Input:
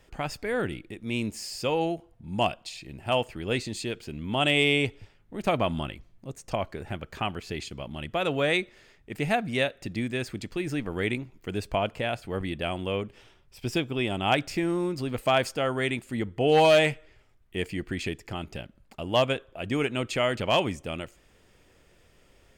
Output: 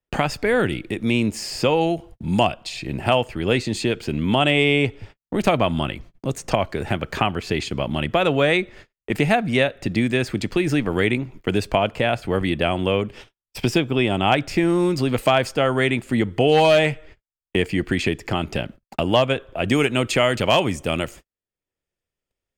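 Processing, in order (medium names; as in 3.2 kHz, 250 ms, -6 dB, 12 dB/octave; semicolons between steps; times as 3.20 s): gate -50 dBFS, range -57 dB; treble shelf 4.9 kHz -5.5 dB, from 19.68 s +5.5 dB; three bands compressed up and down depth 70%; trim +8 dB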